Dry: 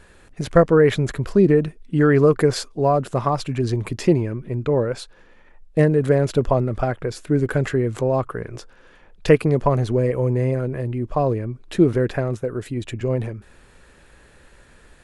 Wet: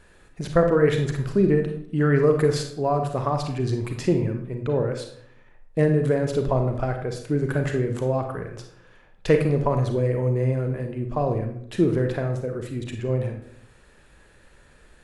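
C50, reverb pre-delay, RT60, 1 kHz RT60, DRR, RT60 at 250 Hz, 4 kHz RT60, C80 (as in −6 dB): 7.0 dB, 32 ms, 0.65 s, 0.60 s, 4.5 dB, 0.85 s, 0.45 s, 10.0 dB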